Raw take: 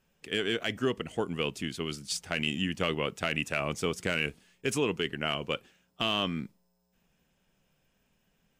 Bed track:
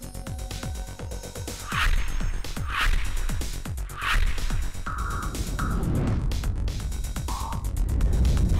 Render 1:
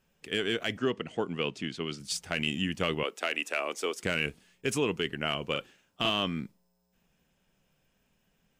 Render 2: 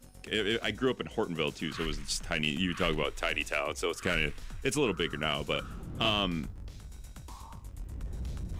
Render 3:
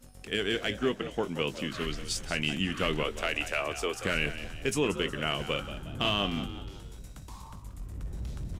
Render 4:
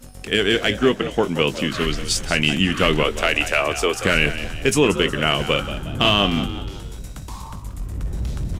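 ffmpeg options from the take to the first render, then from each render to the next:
-filter_complex "[0:a]asettb=1/sr,asplit=3[a][b][c];[a]atrim=end=0.774[d];[b]atrim=start=0.77:end=2,asetpts=PTS-STARTPTS,afade=t=in:d=0.004:c=qsin,afade=t=out:st=1.226:d=0.004:c=qsin,highpass=120,lowpass=5.5k[e];[c]atrim=start=1.996[f];[d][e]acrossfade=d=0.004:c1=hsin:c2=qsin[g];[g][f]acrossfade=d=0.004:c1=qsin:c2=hsin,asettb=1/sr,asplit=3[h][i][j];[h]atrim=end=3.034[k];[i]atrim=start=3.03:end=4.03,asetpts=PTS-STARTPTS,afade=t=in:d=0.004:c=qsin,afade=t=out:st=0.996:d=0.004:c=qsin,highpass=f=320:w=0.5412,highpass=f=320:w=1.3066[l];[j]atrim=start=4.026[m];[k][l]acrossfade=d=0.004:c1=hsin:c2=qsin[n];[n][m]acrossfade=d=0.004:c1=qsin:c2=hsin,asettb=1/sr,asplit=3[o][p][q];[o]atrim=end=5.514[r];[p]atrim=start=5.51:end=6.1,asetpts=PTS-STARTPTS,afade=t=in:d=0.004:c=qsin,afade=t=out:st=0.586:d=0.004:c=qsin,asplit=2[s][t];[t]adelay=42,volume=-3dB[u];[s][u]amix=inputs=2:normalize=0,atrim=end_sample=26019[v];[q]atrim=start=6.096[w];[r][v]acrossfade=d=0.004:c1=hsin:c2=qsin[x];[x][w]acrossfade=d=0.004:c1=qsin:c2=hsin"
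-filter_complex "[1:a]volume=-16dB[a];[0:a][a]amix=inputs=2:normalize=0"
-filter_complex "[0:a]asplit=2[a][b];[b]adelay=20,volume=-13dB[c];[a][c]amix=inputs=2:normalize=0,asplit=5[d][e][f][g][h];[e]adelay=181,afreqshift=66,volume=-12dB[i];[f]adelay=362,afreqshift=132,volume=-19.1dB[j];[g]adelay=543,afreqshift=198,volume=-26.3dB[k];[h]adelay=724,afreqshift=264,volume=-33.4dB[l];[d][i][j][k][l]amix=inputs=5:normalize=0"
-af "volume=11.5dB"

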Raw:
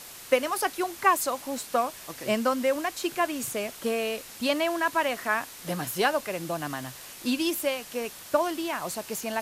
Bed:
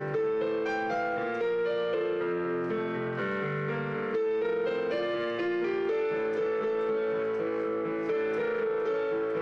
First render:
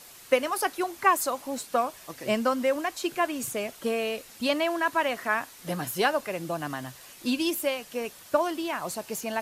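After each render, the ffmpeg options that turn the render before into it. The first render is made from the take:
-af "afftdn=nr=6:nf=-45"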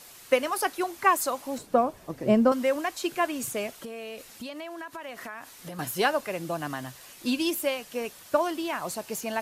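-filter_complex "[0:a]asettb=1/sr,asplit=3[a][b][c];[a]atrim=end=1.584[d];[b]atrim=start=1.58:end=2.52,asetpts=PTS-STARTPTS,afade=t=in:d=0.004:c=qsin,afade=t=out:st=0.936:d=0.004:c=qsin,tiltshelf=f=970:g=9.5[e];[c]atrim=start=2.516[f];[d][e]acrossfade=d=0.004:c1=hsin:c2=qsin[g];[g][f]acrossfade=d=0.004:c1=qsin:c2=hsin,asettb=1/sr,asplit=3[h][i][j];[h]atrim=end=3.834[k];[i]atrim=start=3.83:end=5.79,asetpts=PTS-STARTPTS,afade=t=in:d=0.004:c=qsin,afade=t=out:st=1.956:d=0.004:c=qsin,acompressor=threshold=-35dB:ratio=10:attack=3.2:release=140:knee=1:detection=peak[l];[j]atrim=start=5.786[m];[k][l]acrossfade=d=0.004:c1=hsin:c2=qsin[n];[n][m]acrossfade=d=0.004:c1=qsin:c2=hsin"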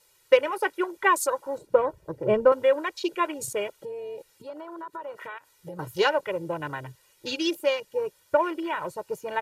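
-af "afwtdn=0.0126,aecho=1:1:2.1:0.88"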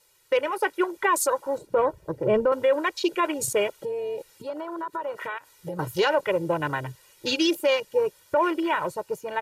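-af "dynaudnorm=f=140:g=9:m=6dB,alimiter=limit=-13.5dB:level=0:latency=1:release=25"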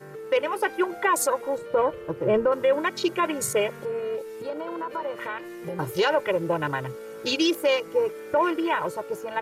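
-filter_complex "[1:a]volume=-10dB[a];[0:a][a]amix=inputs=2:normalize=0"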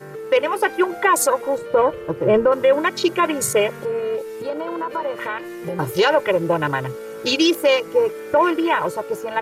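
-af "volume=6dB"

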